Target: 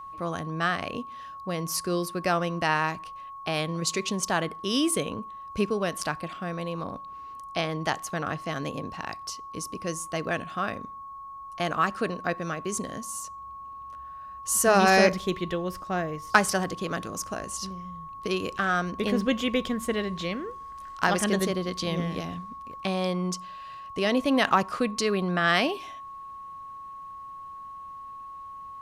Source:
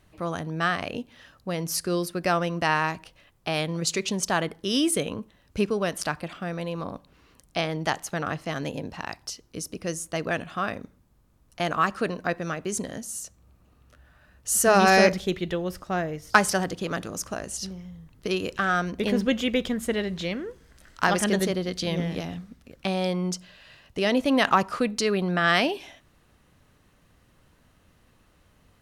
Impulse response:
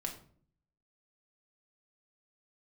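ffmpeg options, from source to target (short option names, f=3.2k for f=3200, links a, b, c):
-af "aeval=exprs='val(0)+0.0141*sin(2*PI*1100*n/s)':c=same,volume=-1.5dB"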